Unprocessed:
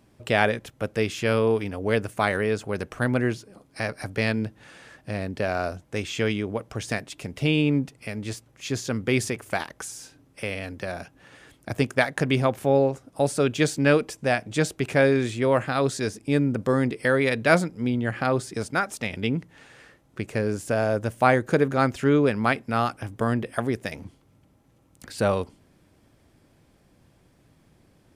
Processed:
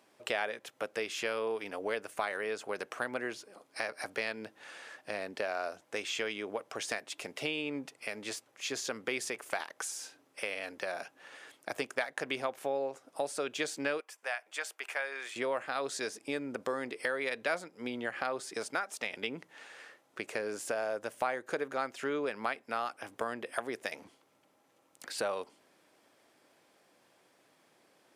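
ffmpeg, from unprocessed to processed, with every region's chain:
ffmpeg -i in.wav -filter_complex "[0:a]asettb=1/sr,asplit=3[link_01][link_02][link_03];[link_01]atrim=end=14.004[link_04];[link_02]atrim=start=14:end=15.36,asetpts=PTS-STARTPTS,afade=type=in:duration=0.004:curve=qsin,afade=type=out:start_time=1.356:duration=0.004:curve=qsin,highpass=1100,equalizer=frequency=5500:width=0.47:gain=-8,bandreject=frequency=3900:width=15[link_05];[link_03]atrim=start=15.356[link_06];[link_04][link_05]acrossfade=duration=0.004:curve1=hsin:curve2=qsin[link_07];[link_07][link_06]acrossfade=duration=0.004:curve1=qsin:curve2=hsin,highpass=500,highshelf=frequency=10000:gain=-3.5,acompressor=threshold=-33dB:ratio=3" out.wav

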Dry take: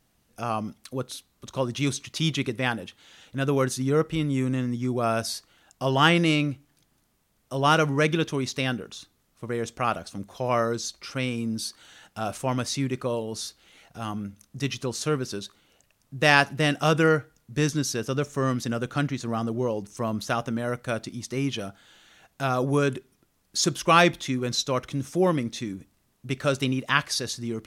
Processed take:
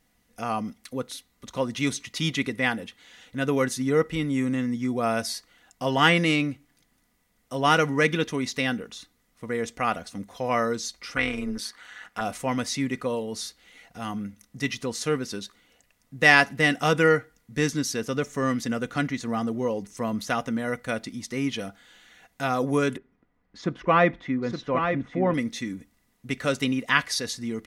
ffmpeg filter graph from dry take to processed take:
ffmpeg -i in.wav -filter_complex "[0:a]asettb=1/sr,asplit=3[link_01][link_02][link_03];[link_01]atrim=end=11.164[link_04];[link_02]atrim=start=11.16:end=12.21,asetpts=PTS-STARTPTS,afade=type=in:duration=0.004:curve=qsin,afade=type=out:start_time=1.046:duration=0.004:curve=qsin,equalizer=frequency=1400:width=0.81:gain=11.5,tremolo=f=210:d=0.75[link_05];[link_03]atrim=start=12.206[link_06];[link_04][link_05]acrossfade=duration=0.004:curve1=hsin:curve2=qsin[link_07];[link_07][link_06]acrossfade=duration=0.004:curve1=qsin:curve2=hsin,asettb=1/sr,asplit=3[link_08][link_09][link_10];[link_08]atrim=end=22.974[link_11];[link_09]atrim=start=22.97:end=25.34,asetpts=PTS-STARTPTS,afade=type=in:duration=0.004:curve=qsin,afade=type=out:start_time=2.366:duration=0.004:curve=qsin,lowpass=1600,aecho=1:1:868:0.473,atrim=end_sample=104517[link_12];[link_10]atrim=start=25.336[link_13];[link_11][link_12]acrossfade=duration=0.004:curve1=hsin:curve2=qsin[link_14];[link_14][link_13]acrossfade=duration=0.004:curve1=qsin:curve2=hsin,equalizer=frequency=2000:width_type=o:width=0.21:gain=9.5,aecho=1:1:4.1:0.41,volume=-1dB" out.wav

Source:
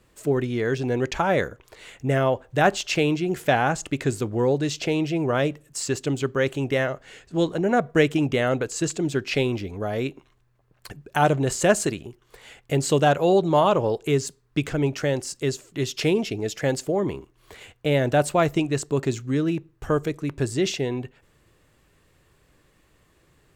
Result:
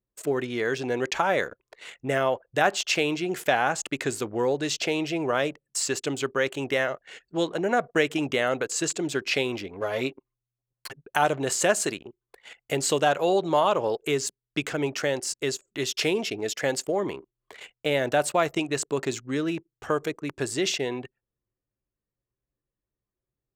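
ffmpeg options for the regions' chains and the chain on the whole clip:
ffmpeg -i in.wav -filter_complex "[0:a]asettb=1/sr,asplit=3[link_01][link_02][link_03];[link_01]atrim=end=9.804[link_04];[link_02]atrim=start=9.8:end=11.03,asetpts=PTS-STARTPTS,afade=type=in:duration=0.004:curve=qsin,afade=type=out:start_time=1.226:duration=0.004:curve=qsin,aeval=exprs='if(lt(val(0),0),0.708*val(0),val(0))':channel_layout=same,aecho=1:1:7.5:0.74,atrim=end_sample=54243[link_05];[link_03]atrim=start=11.026[link_06];[link_04][link_05]acrossfade=duration=0.004:curve1=hsin:curve2=qsin[link_07];[link_07][link_06]acrossfade=duration=0.004:curve1=qsin:curve2=hsin,highpass=frequency=580:poles=1,anlmdn=0.0398,acompressor=threshold=-26dB:ratio=1.5,volume=3dB" out.wav

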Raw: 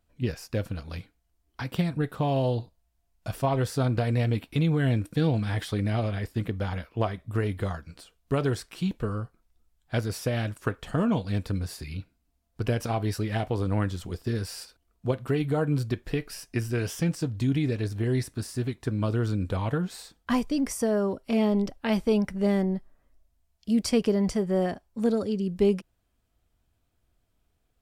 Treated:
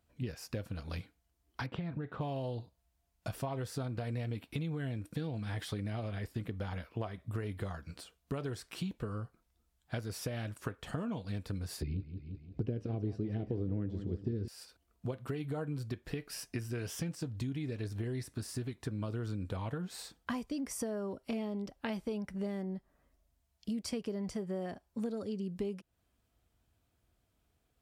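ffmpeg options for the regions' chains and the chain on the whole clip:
ffmpeg -i in.wav -filter_complex "[0:a]asettb=1/sr,asplit=3[link_01][link_02][link_03];[link_01]atrim=end=1.664[link_04];[link_02]atrim=start=1.66:end=2.21,asetpts=PTS-STARTPTS,afade=type=in:duration=0.004:curve=qsin,afade=type=out:start_time=0.546:duration=0.004:curve=qsin,lowpass=2500,acompressor=threshold=-29dB:ratio=3:attack=3.2:release=140:knee=1:detection=peak[link_05];[link_03]atrim=start=2.206[link_06];[link_04][link_05]acrossfade=duration=0.004:curve1=hsin:curve2=qsin[link_07];[link_07][link_06]acrossfade=duration=0.004:curve1=qsin:curve2=hsin,asettb=1/sr,asplit=3[link_08][link_09][link_10];[link_08]atrim=end=11.824[link_11];[link_09]atrim=start=11.82:end=14.48,asetpts=PTS-STARTPTS,afade=type=in:duration=0.004:curve=qsin,afade=type=out:start_time=2.656:duration=0.004:curve=qsin,lowpass=4200,lowshelf=frequency=580:width_type=q:width=1.5:gain=13.5,aecho=1:1:174|348|522|696:0.211|0.0867|0.0355|0.0146,atrim=end_sample=117306[link_12];[link_10]atrim=start=14.476[link_13];[link_11][link_12]acrossfade=duration=0.004:curve1=hsin:curve2=qsin[link_14];[link_14][link_13]acrossfade=duration=0.004:curve1=qsin:curve2=hsin,acompressor=threshold=-34dB:ratio=6,highpass=48,volume=-1dB" out.wav

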